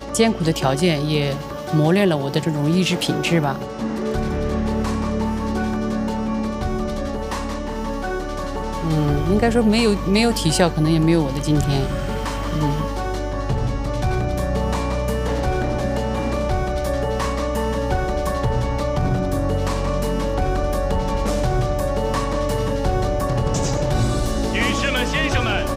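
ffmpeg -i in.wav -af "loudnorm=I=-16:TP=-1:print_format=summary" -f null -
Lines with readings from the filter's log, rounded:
Input Integrated:    -21.2 LUFS
Input True Peak:      -2.4 dBTP
Input LRA:             4.3 LU
Input Threshold:     -31.2 LUFS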